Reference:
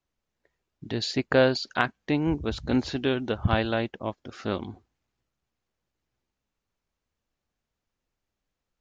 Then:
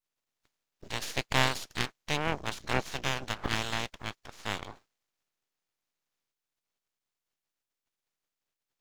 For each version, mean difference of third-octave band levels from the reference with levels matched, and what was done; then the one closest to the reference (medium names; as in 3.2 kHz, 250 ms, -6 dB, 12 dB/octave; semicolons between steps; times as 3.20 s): 11.5 dB: spectral peaks clipped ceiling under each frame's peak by 28 dB; half-wave rectifier; trim -3 dB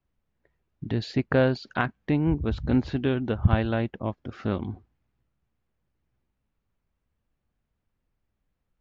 3.0 dB: tone controls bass +8 dB, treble -14 dB; in parallel at -3 dB: compression, threshold -27 dBFS, peak gain reduction 15.5 dB; on the sum: trim -4 dB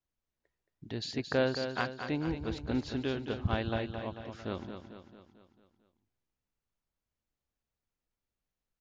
5.0 dB: bass shelf 130 Hz +4 dB; on a send: feedback delay 223 ms, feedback 53%, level -8 dB; on the sum: trim -9 dB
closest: second